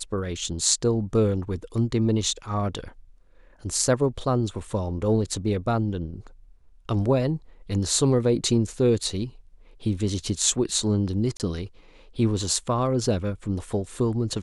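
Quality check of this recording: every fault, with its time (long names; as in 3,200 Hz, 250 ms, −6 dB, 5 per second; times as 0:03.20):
0:11.37–0:11.40: drop-out 28 ms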